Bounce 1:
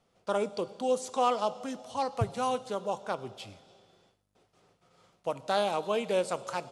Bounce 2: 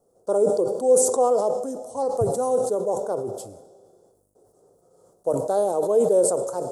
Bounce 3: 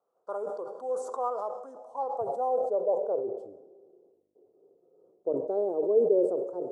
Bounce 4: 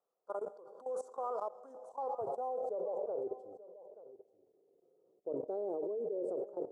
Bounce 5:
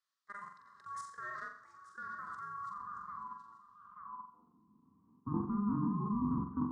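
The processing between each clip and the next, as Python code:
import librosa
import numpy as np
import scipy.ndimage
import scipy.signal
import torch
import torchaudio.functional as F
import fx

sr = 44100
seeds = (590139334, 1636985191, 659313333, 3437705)

y1 = fx.curve_eq(x, sr, hz=(210.0, 450.0, 1500.0, 2400.0, 8300.0), db=(0, 13, -10, -29, 10))
y1 = fx.sustainer(y1, sr, db_per_s=56.0)
y2 = fx.high_shelf(y1, sr, hz=8600.0, db=-5.5)
y2 = fx.filter_sweep_bandpass(y2, sr, from_hz=1200.0, to_hz=370.0, start_s=1.63, end_s=3.64, q=2.7)
y3 = fx.level_steps(y2, sr, step_db=17)
y3 = y3 + 10.0 ** (-16.5 / 20.0) * np.pad(y3, (int(882 * sr / 1000.0), 0))[:len(y3)]
y3 = y3 * 10.0 ** (-3.0 / 20.0)
y4 = y3 * np.sin(2.0 * np.pi * 610.0 * np.arange(len(y3)) / sr)
y4 = fx.filter_sweep_bandpass(y4, sr, from_hz=4300.0, to_hz=280.0, start_s=3.71, end_s=4.58, q=1.8)
y4 = fx.room_flutter(y4, sr, wall_m=7.5, rt60_s=0.47)
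y4 = y4 * 10.0 ** (13.0 / 20.0)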